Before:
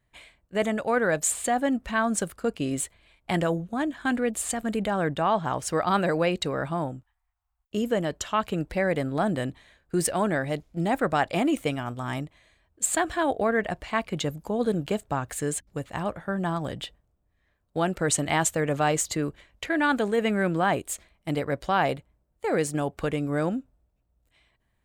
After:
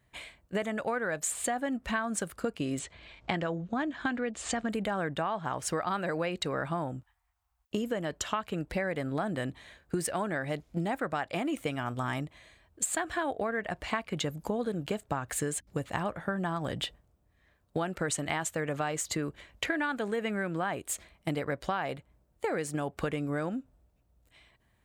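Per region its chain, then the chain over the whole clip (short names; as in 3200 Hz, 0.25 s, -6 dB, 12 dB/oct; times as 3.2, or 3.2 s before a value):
2.79–4.7 LPF 6300 Hz 24 dB/oct + upward compressor, threshold -47 dBFS
whole clip: dynamic EQ 1600 Hz, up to +4 dB, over -38 dBFS, Q 0.87; compressor 10:1, threshold -33 dBFS; HPF 46 Hz; gain +4.5 dB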